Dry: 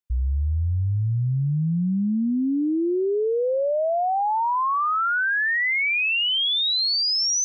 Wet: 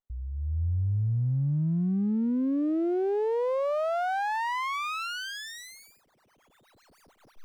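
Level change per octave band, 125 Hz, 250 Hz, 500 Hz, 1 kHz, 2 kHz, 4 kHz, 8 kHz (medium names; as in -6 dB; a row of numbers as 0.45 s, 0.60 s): -4.5 dB, -4.0 dB, -5.0 dB, -8.0 dB, -14.0 dB, -20.0 dB, no reading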